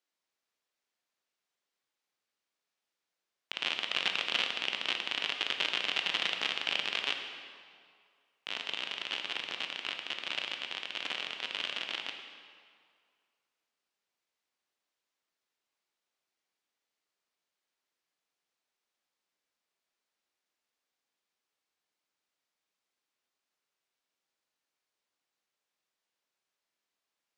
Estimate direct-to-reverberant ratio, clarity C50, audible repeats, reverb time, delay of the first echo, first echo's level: 4.0 dB, 5.5 dB, no echo, 2.1 s, no echo, no echo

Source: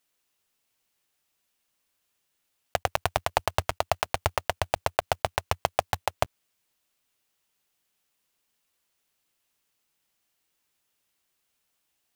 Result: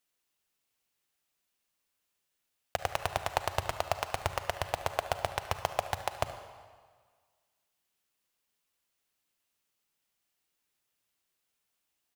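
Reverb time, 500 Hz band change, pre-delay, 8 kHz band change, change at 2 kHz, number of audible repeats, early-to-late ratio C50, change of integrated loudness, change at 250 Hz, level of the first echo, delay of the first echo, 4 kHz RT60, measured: 1.7 s, -5.0 dB, 36 ms, -5.0 dB, -5.0 dB, 1, 9.0 dB, -5.0 dB, -5.0 dB, -17.0 dB, 73 ms, 1.4 s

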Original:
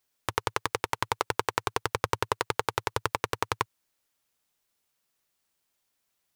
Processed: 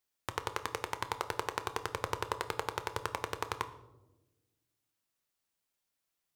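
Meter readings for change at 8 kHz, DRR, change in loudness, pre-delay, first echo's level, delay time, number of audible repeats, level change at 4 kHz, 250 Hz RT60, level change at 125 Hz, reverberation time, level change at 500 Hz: -7.0 dB, 10.0 dB, -7.0 dB, 11 ms, no echo, no echo, no echo, -7.0 dB, 1.8 s, -7.5 dB, 1.1 s, -6.5 dB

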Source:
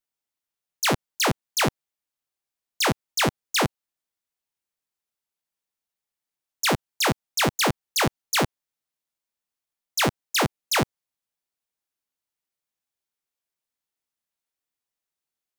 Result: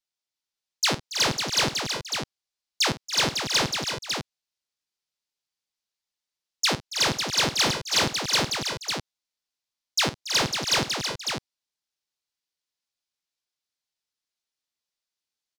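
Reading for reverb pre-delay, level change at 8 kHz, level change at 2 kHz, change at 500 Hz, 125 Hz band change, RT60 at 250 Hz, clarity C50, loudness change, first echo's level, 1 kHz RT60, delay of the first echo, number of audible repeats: no reverb, +1.5 dB, -0.5 dB, -3.0 dB, -3.5 dB, no reverb, no reverb, 0.0 dB, -14.5 dB, no reverb, 51 ms, 5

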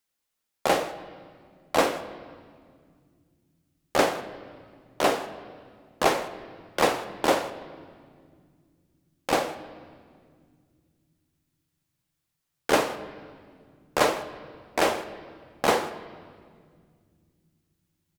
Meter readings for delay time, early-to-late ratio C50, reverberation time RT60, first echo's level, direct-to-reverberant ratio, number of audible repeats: 163 ms, 12.5 dB, 2.0 s, -22.0 dB, 10.0 dB, 1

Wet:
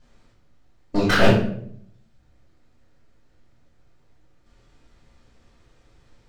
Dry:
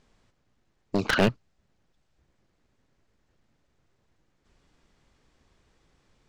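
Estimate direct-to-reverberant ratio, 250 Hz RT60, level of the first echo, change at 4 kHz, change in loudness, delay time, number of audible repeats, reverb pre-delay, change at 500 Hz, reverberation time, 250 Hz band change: -10.5 dB, 0.85 s, no echo, +5.5 dB, +5.0 dB, no echo, no echo, 3 ms, +7.5 dB, 0.65 s, +6.5 dB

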